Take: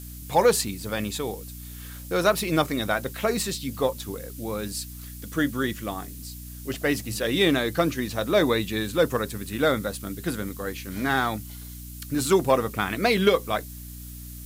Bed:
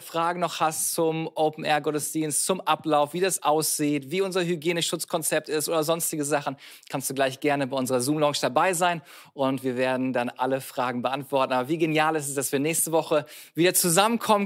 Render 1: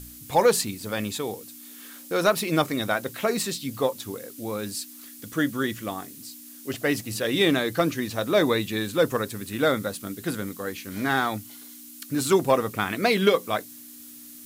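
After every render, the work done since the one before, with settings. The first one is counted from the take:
hum removal 60 Hz, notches 3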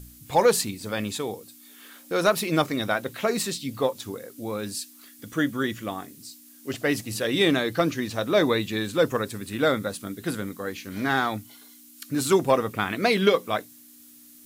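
noise reduction from a noise print 6 dB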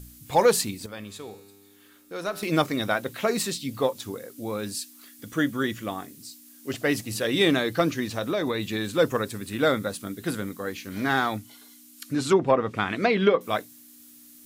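0:00.86–0:02.43: tuned comb filter 100 Hz, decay 2 s, mix 70%
0:08.05–0:08.91: downward compressor 10 to 1, threshold −22 dBFS
0:11.37–0:13.41: treble cut that deepens with the level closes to 1,900 Hz, closed at −15.5 dBFS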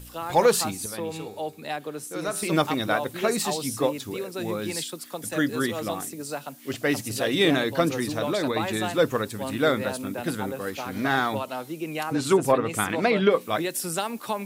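mix in bed −8.5 dB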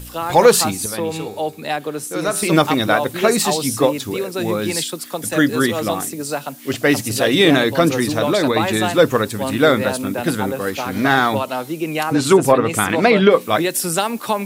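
level +9 dB
brickwall limiter −2 dBFS, peak gain reduction 3 dB

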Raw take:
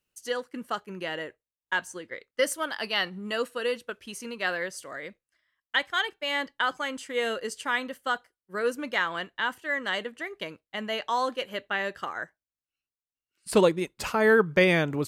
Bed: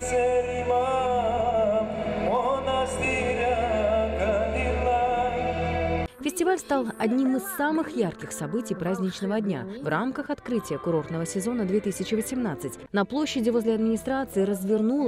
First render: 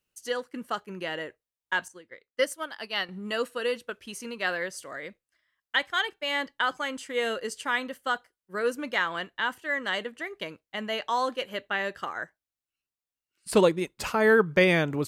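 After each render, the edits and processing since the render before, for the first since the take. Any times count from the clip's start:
0:01.88–0:03.09: expander for the loud parts, over −45 dBFS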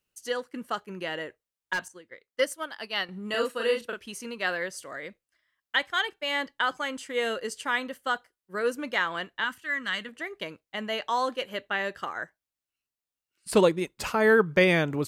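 0:01.73–0:02.40: hard clipping −24.5 dBFS
0:03.30–0:04.03: double-tracking delay 39 ms −2.5 dB
0:09.44–0:10.09: flat-topped bell 550 Hz −10.5 dB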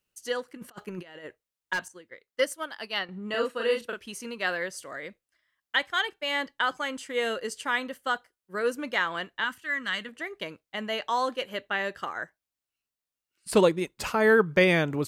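0:00.48–0:01.26: compressor whose output falls as the input rises −40 dBFS, ratio −0.5
0:02.98–0:03.70: low-pass filter 2,500 Hz → 4,600 Hz 6 dB per octave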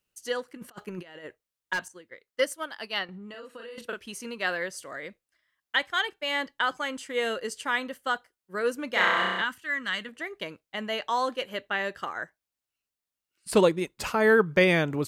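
0:03.05–0:03.78: downward compressor 10 to 1, threshold −39 dBFS
0:08.90–0:09.42: flutter between parallel walls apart 5.5 metres, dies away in 1.4 s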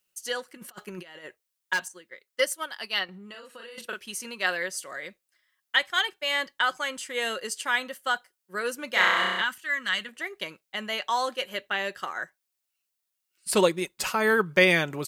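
spectral tilt +2 dB per octave
comb filter 5.4 ms, depth 31%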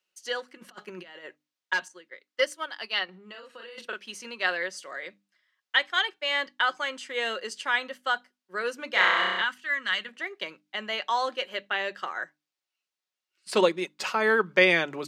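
three-way crossover with the lows and the highs turned down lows −14 dB, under 200 Hz, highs −18 dB, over 6,100 Hz
mains-hum notches 50/100/150/200/250/300 Hz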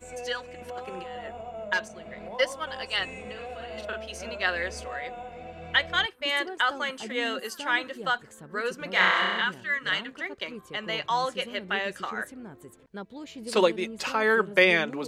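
mix in bed −15 dB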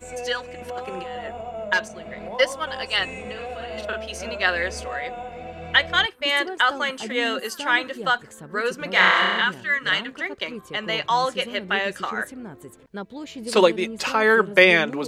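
level +5.5 dB
brickwall limiter −1 dBFS, peak gain reduction 1 dB

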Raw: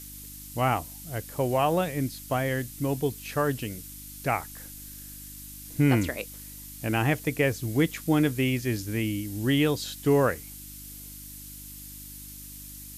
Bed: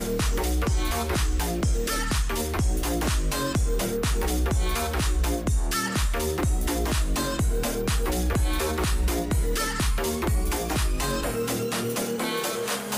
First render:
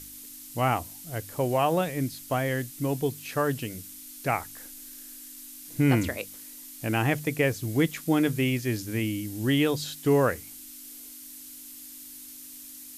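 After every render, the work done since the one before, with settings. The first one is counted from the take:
hum removal 50 Hz, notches 4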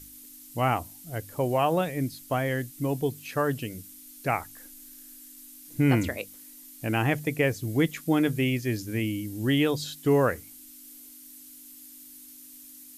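broadband denoise 6 dB, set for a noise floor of −45 dBFS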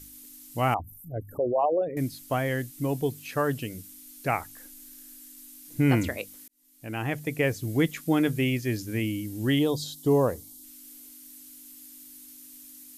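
0:00.74–0:01.97: spectral envelope exaggerated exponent 3
0:06.48–0:07.53: fade in
0:09.59–0:10.64: flat-topped bell 1,900 Hz −14 dB 1.3 octaves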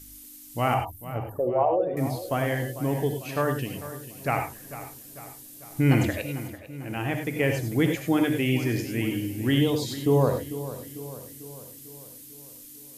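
feedback echo with a low-pass in the loop 447 ms, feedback 57%, low-pass 3,500 Hz, level −13.5 dB
reverb whose tail is shaped and stops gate 120 ms rising, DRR 4.5 dB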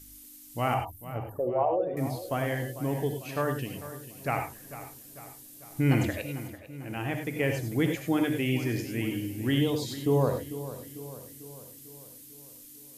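level −3.5 dB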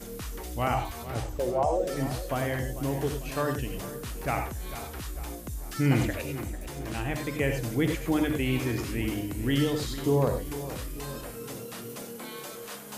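mix in bed −13 dB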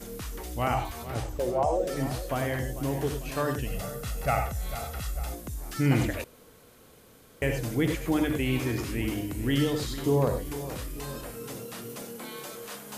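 0:03.66–0:05.34: comb filter 1.5 ms, depth 72%
0:06.24–0:07.42: fill with room tone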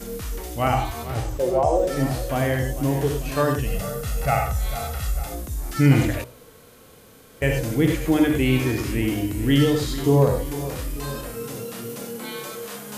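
harmonic and percussive parts rebalanced harmonic +9 dB
hum removal 60.7 Hz, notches 21

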